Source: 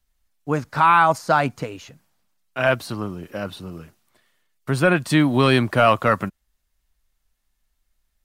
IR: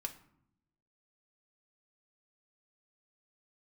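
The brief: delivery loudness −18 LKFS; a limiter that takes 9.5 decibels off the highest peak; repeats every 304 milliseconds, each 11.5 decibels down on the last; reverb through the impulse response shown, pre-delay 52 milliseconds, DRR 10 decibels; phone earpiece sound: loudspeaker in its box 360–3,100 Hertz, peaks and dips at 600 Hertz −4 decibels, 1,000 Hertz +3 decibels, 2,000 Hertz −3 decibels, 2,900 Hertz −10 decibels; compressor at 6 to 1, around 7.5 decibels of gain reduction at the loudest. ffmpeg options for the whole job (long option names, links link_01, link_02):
-filter_complex "[0:a]acompressor=threshold=-19dB:ratio=6,alimiter=limit=-17.5dB:level=0:latency=1,aecho=1:1:304|608|912:0.266|0.0718|0.0194,asplit=2[link_01][link_02];[1:a]atrim=start_sample=2205,adelay=52[link_03];[link_02][link_03]afir=irnorm=-1:irlink=0,volume=-8.5dB[link_04];[link_01][link_04]amix=inputs=2:normalize=0,highpass=360,equalizer=frequency=600:width_type=q:width=4:gain=-4,equalizer=frequency=1000:width_type=q:width=4:gain=3,equalizer=frequency=2000:width_type=q:width=4:gain=-3,equalizer=frequency=2900:width_type=q:width=4:gain=-10,lowpass=frequency=3100:width=0.5412,lowpass=frequency=3100:width=1.3066,volume=13.5dB"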